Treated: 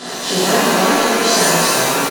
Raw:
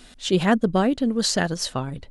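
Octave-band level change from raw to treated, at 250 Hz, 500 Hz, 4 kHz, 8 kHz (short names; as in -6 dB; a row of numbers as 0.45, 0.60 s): +2.0, +8.5, +11.0, +14.5 dB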